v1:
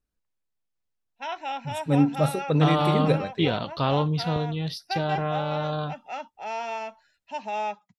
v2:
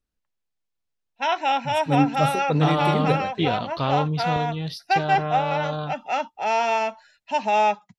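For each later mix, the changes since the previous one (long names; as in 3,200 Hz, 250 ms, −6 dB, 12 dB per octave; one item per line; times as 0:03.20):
background +10.0 dB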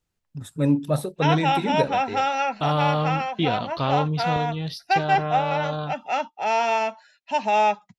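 first voice: entry −1.30 s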